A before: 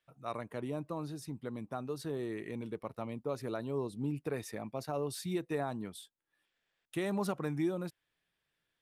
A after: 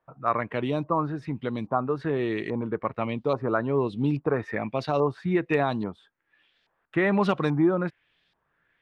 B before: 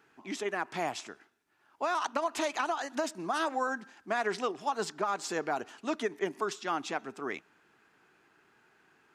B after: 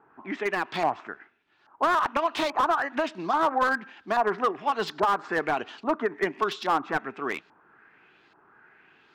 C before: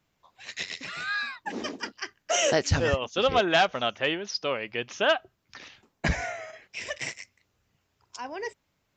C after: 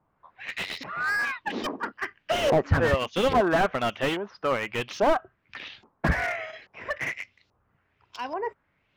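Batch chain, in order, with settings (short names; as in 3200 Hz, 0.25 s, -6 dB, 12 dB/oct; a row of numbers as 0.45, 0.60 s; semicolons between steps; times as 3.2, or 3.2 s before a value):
dynamic EQ 1100 Hz, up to +4 dB, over -52 dBFS, Q 7.7; LFO low-pass saw up 1.2 Hz 910–4600 Hz; slew limiter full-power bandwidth 73 Hz; match loudness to -27 LUFS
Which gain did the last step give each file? +10.5, +4.5, +2.0 dB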